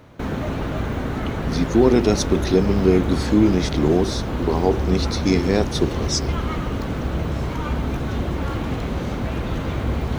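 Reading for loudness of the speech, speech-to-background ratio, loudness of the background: -20.5 LUFS, 5.0 dB, -25.5 LUFS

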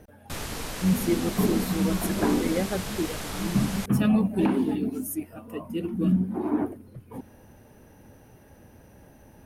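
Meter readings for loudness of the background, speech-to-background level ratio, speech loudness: -34.5 LUFS, 8.0 dB, -26.5 LUFS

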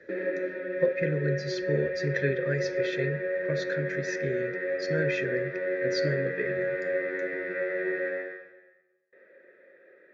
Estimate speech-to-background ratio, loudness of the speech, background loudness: -1.0 dB, -32.0 LUFS, -31.0 LUFS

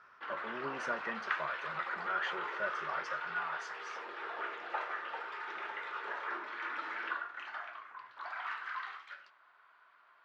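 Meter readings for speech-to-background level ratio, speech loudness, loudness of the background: 1.0 dB, -39.5 LUFS, -40.5 LUFS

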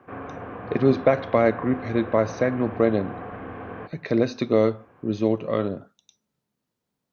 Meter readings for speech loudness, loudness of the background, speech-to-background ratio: -23.5 LUFS, -36.5 LUFS, 13.0 dB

